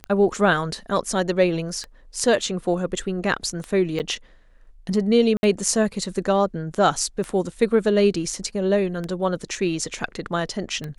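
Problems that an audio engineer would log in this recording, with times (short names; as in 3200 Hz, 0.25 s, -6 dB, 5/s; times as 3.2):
tick 33 1/3 rpm -17 dBFS
3.99–4 gap 9.2 ms
5.37–5.43 gap 61 ms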